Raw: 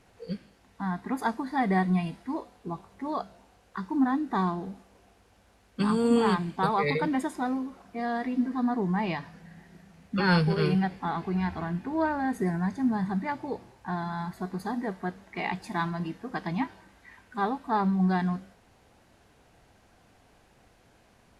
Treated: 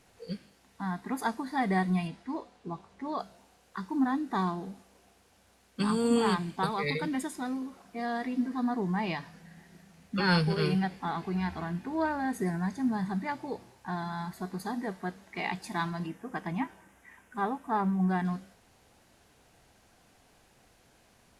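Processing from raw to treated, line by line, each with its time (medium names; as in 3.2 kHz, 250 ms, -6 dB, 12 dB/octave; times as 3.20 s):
2.07–3.19 s: distance through air 62 m
6.64–7.62 s: peaking EQ 790 Hz -5.5 dB 1.7 oct
16.06–18.25 s: peaking EQ 4.3 kHz -14.5 dB 0.59 oct
whole clip: treble shelf 3.7 kHz +8 dB; hum notches 50/100 Hz; trim -3 dB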